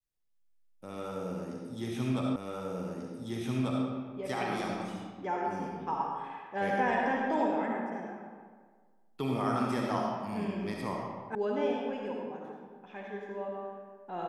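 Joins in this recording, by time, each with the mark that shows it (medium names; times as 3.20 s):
2.36 s: repeat of the last 1.49 s
11.35 s: sound stops dead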